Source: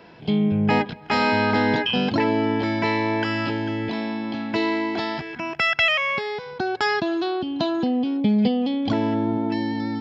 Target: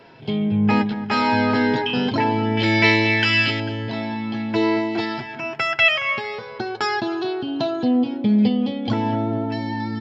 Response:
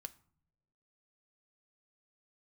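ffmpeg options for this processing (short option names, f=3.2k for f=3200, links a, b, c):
-filter_complex "[0:a]asettb=1/sr,asplit=3[a][b][c];[a]atrim=end=2.574[d];[b]atrim=start=2.57:end=3.6,asetpts=PTS-STARTPTS,afade=t=in:d=0.004:c=qsin,afade=t=out:st=1.026:d=0.004:c=qsin,highshelf=f=1.6k:t=q:w=1.5:g=10[e];[c]atrim=start=3.596[f];[d][e]acrossfade=d=0.004:c1=hsin:c2=qsin[g];[g][f]acrossfade=d=0.004:c1=qsin:c2=hsin,asplit=2[h][i];[i]adelay=226,lowpass=f=1.5k:p=1,volume=-12dB,asplit=2[j][k];[k]adelay=226,lowpass=f=1.5k:p=1,volume=0.53,asplit=2[l][m];[m]adelay=226,lowpass=f=1.5k:p=1,volume=0.53,asplit=2[n][o];[o]adelay=226,lowpass=f=1.5k:p=1,volume=0.53,asplit=2[p][q];[q]adelay=226,lowpass=f=1.5k:p=1,volume=0.53,asplit=2[r][s];[s]adelay=226,lowpass=f=1.5k:p=1,volume=0.53[t];[h][j][l][n][p][r][t]amix=inputs=7:normalize=0,asplit=2[u][v];[1:a]atrim=start_sample=2205,asetrate=39249,aresample=44100[w];[v][w]afir=irnorm=-1:irlink=0,volume=8.5dB[x];[u][x]amix=inputs=2:normalize=0,flanger=delay=7.4:depth=1.6:regen=33:speed=0.53:shape=sinusoidal,volume=-4dB"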